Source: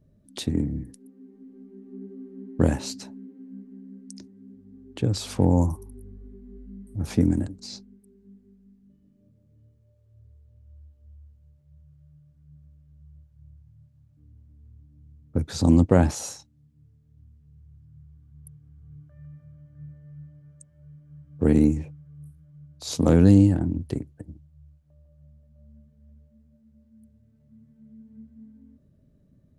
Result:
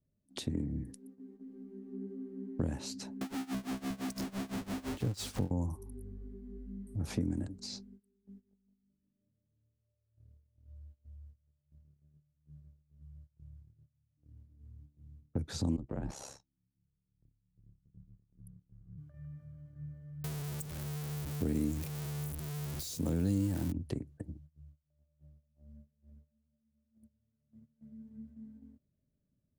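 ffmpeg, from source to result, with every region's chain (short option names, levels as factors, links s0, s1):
-filter_complex "[0:a]asettb=1/sr,asplit=3[s0][s1][s2];[s0]atrim=end=3.214[s3];[s1]atrim=start=3.21:end=5.51,asetpts=PTS-STARTPTS,afade=t=in:d=0.004:c=qsin,afade=t=out:st=2.296:d=0.004:c=qsin,aeval=exprs='val(0)+0.5*0.0473*sgn(val(0))':c=same,equalizer=f=7600:t=o:w=2.4:g=2.5,tremolo=f=5.9:d=0.92[s4];[s2]atrim=start=5.506[s5];[s3][s4]acrossfade=d=0.004:c1=hsin:c2=qsin[s6];[s6][s5]acrossfade=d=0.004:c1=qsin:c2=hsin,asettb=1/sr,asplit=3[s7][s8][s9];[s7]atrim=end=15.764[s10];[s8]atrim=start=15.76:end=18.98,asetpts=PTS-STARTPTS,afade=t=in:d=0.004:c=qsin,afade=t=out:st=3.216:d=0.004:c=qsin,highshelf=f=2600:g=-11,acompressor=threshold=0.0501:ratio=2.5:attack=3.2:release=140:knee=1:detection=peak,aeval=exprs='val(0)*sin(2*PI*34*n/s)':c=same[s11];[s9]atrim=start=18.976[s12];[s10][s11]acrossfade=d=0.004:c1=hsin:c2=qsin[s13];[s13][s12]acrossfade=d=0.004:c1=qsin:c2=hsin,asettb=1/sr,asplit=3[s14][s15][s16];[s14]atrim=end=20.244[s17];[s15]atrim=start=20.24:end=23.72,asetpts=PTS-STARTPTS,afade=t=in:d=0.004:c=qsin,afade=t=out:st=3.476:d=0.004:c=qsin,aeval=exprs='val(0)+0.5*0.0299*sgn(val(0))':c=same,aemphasis=mode=production:type=75kf[s18];[s16]atrim=start=23.716[s19];[s17][s18]acrossfade=d=0.004:c1=hsin:c2=qsin[s20];[s20][s19]acrossfade=d=0.004:c1=qsin:c2=hsin,acompressor=threshold=0.0282:ratio=2.5,agate=range=0.126:threshold=0.00282:ratio=16:detection=peak,acrossover=split=340[s21][s22];[s22]acompressor=threshold=0.0141:ratio=6[s23];[s21][s23]amix=inputs=2:normalize=0,volume=0.75"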